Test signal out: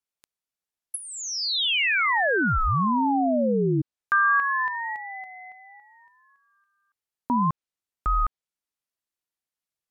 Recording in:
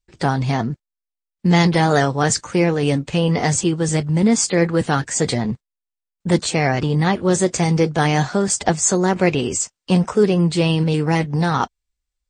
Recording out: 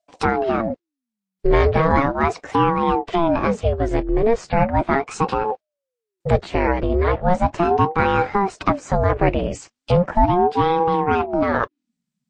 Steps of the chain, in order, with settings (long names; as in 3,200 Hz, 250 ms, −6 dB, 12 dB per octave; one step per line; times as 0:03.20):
treble cut that deepens with the level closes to 1,900 Hz, closed at −16 dBFS
ring modulator whose carrier an LFO sweeps 420 Hz, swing 55%, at 0.37 Hz
level +2.5 dB